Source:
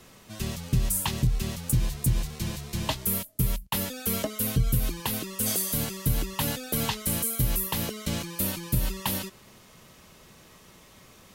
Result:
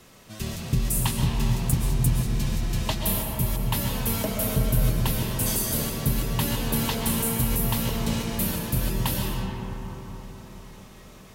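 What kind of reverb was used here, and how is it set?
algorithmic reverb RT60 4.6 s, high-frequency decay 0.3×, pre-delay 90 ms, DRR -0.5 dB

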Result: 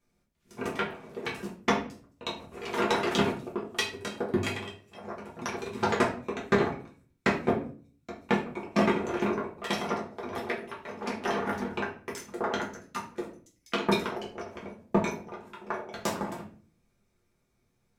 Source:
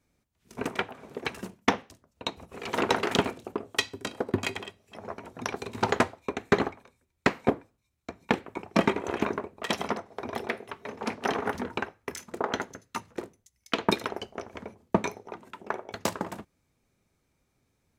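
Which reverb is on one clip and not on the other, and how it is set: simulated room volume 33 m³, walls mixed, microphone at 0.84 m; trim -6 dB

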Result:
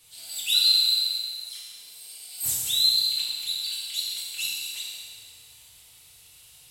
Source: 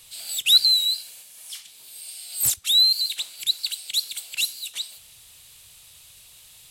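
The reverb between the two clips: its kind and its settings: FDN reverb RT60 2.5 s, low-frequency decay 0.8×, high-frequency decay 0.75×, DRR -7.5 dB; trim -10.5 dB

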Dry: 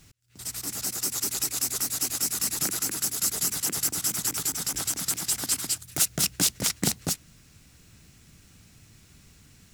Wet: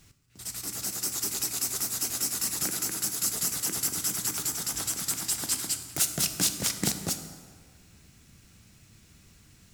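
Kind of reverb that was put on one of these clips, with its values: plate-style reverb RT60 1.7 s, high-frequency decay 0.65×, DRR 7 dB; trim -2.5 dB

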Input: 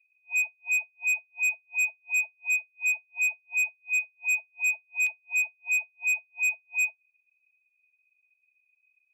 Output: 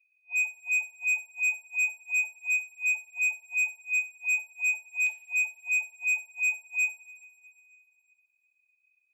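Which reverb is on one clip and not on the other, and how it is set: two-slope reverb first 0.38 s, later 3 s, from -18 dB, DRR 5.5 dB; trim -3.5 dB

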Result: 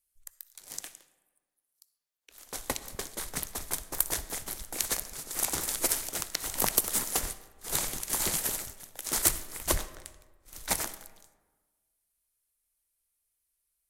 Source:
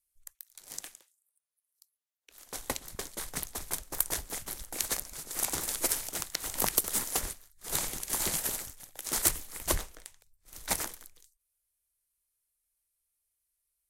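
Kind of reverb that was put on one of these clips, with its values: algorithmic reverb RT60 1.4 s, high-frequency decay 0.55×, pre-delay 20 ms, DRR 14.5 dB; trim +1.5 dB

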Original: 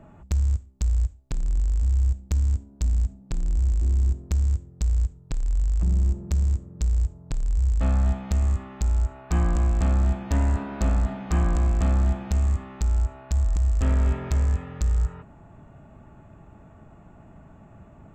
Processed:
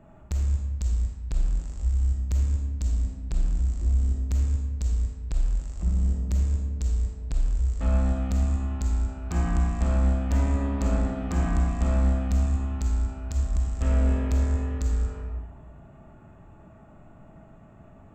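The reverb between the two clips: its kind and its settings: algorithmic reverb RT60 1.4 s, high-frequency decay 0.65×, pre-delay 5 ms, DRR -1 dB; trim -4.5 dB

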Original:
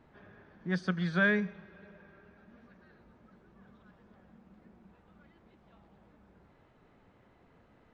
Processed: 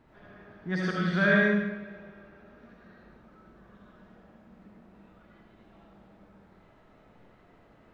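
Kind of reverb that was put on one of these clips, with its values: algorithmic reverb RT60 1 s, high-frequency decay 0.85×, pre-delay 35 ms, DRR -4 dB

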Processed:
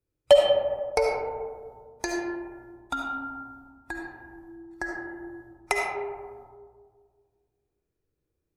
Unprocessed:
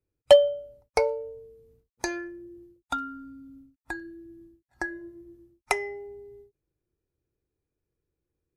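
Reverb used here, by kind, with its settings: algorithmic reverb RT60 1.8 s, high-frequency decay 0.3×, pre-delay 30 ms, DRR -0.5 dB; trim -1 dB

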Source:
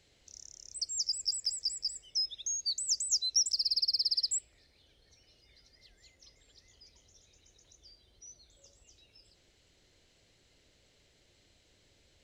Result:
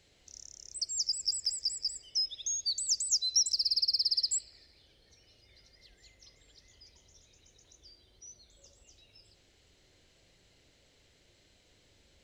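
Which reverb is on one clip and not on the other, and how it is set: spring tank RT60 1.4 s, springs 40 ms, chirp 35 ms, DRR 6.5 dB; trim +1 dB

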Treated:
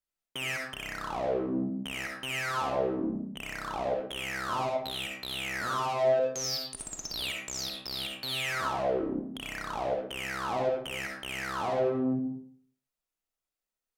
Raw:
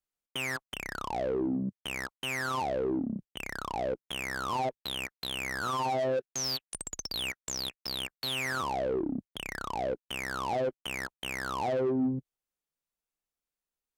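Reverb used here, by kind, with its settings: algorithmic reverb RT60 0.6 s, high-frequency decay 0.65×, pre-delay 25 ms, DRR -0.5 dB; trim -2.5 dB

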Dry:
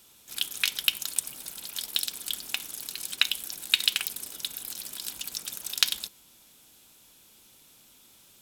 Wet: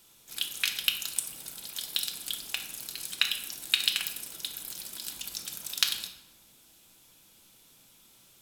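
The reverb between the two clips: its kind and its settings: simulated room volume 380 m³, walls mixed, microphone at 0.72 m; trim -3 dB

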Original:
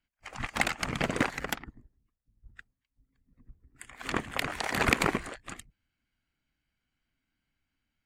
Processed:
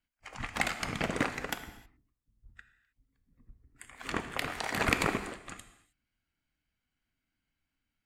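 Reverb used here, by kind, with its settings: gated-style reverb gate 340 ms falling, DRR 8 dB; trim -3 dB

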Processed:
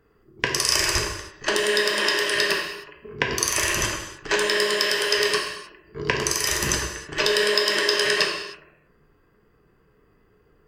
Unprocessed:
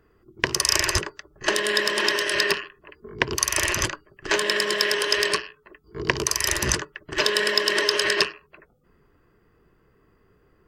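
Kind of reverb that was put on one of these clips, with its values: gated-style reverb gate 340 ms falling, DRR 0.5 dB; trim -2 dB

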